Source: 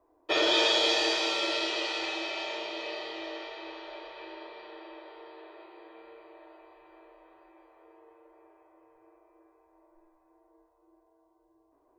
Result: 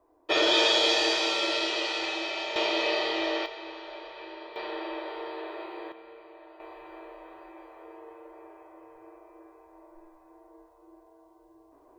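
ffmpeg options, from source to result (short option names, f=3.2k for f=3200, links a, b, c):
-af "asetnsamples=n=441:p=0,asendcmd='2.56 volume volume 10dB;3.46 volume volume 1.5dB;4.56 volume volume 11dB;5.92 volume volume 2dB;6.6 volume volume 10dB',volume=2dB"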